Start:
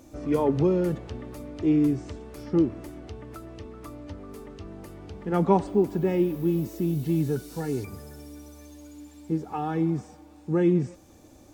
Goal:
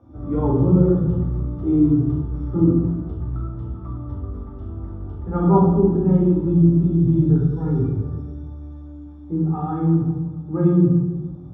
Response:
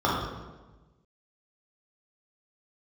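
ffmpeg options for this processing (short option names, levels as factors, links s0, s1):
-filter_complex "[0:a]bass=f=250:g=10,treble=f=4000:g=-15[s0];[1:a]atrim=start_sample=2205[s1];[s0][s1]afir=irnorm=-1:irlink=0,volume=0.126"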